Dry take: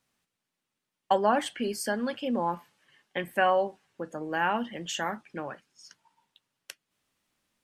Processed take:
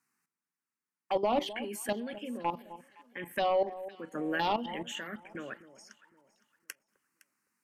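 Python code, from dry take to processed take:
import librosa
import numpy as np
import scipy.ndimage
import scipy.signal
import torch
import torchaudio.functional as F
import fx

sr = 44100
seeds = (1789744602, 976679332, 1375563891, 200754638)

p1 = scipy.signal.sosfilt(scipy.signal.butter(2, 230.0, 'highpass', fs=sr, output='sos'), x)
p2 = fx.level_steps(p1, sr, step_db=14)
p3 = fx.fold_sine(p2, sr, drive_db=4, ceiling_db=-17.0)
p4 = fx.env_phaser(p3, sr, low_hz=590.0, high_hz=1600.0, full_db=-22.5)
p5 = p4 + fx.echo_alternate(p4, sr, ms=256, hz=1000.0, feedback_pct=53, wet_db=-14, dry=0)
p6 = fx.pre_swell(p5, sr, db_per_s=22.0, at=(4.15, 4.8))
y = p6 * 10.0 ** (-2.0 / 20.0)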